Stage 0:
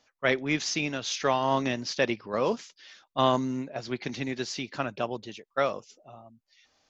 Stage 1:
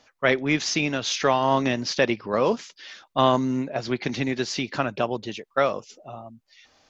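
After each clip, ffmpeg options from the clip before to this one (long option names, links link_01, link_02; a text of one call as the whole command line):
ffmpeg -i in.wav -filter_complex "[0:a]highshelf=frequency=5100:gain=-5,asplit=2[link_01][link_02];[link_02]acompressor=threshold=-35dB:ratio=6,volume=2dB[link_03];[link_01][link_03]amix=inputs=2:normalize=0,volume=2.5dB" out.wav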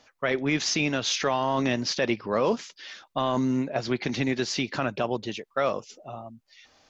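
ffmpeg -i in.wav -af "alimiter=limit=-15dB:level=0:latency=1:release=11" out.wav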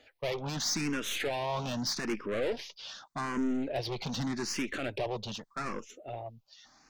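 ffmpeg -i in.wav -filter_complex "[0:a]aeval=exprs='(tanh(28.2*val(0)+0.35)-tanh(0.35))/28.2':channel_layout=same,asplit=2[link_01][link_02];[link_02]afreqshift=0.83[link_03];[link_01][link_03]amix=inputs=2:normalize=1,volume=2.5dB" out.wav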